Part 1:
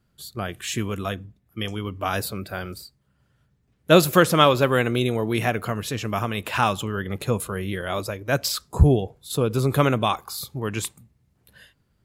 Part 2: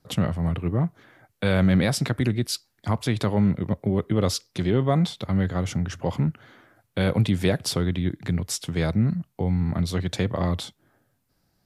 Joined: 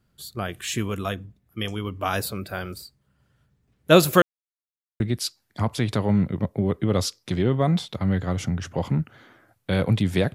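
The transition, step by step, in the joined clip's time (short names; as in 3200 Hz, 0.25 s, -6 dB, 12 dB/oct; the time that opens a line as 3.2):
part 1
4.22–5 mute
5 switch to part 2 from 2.28 s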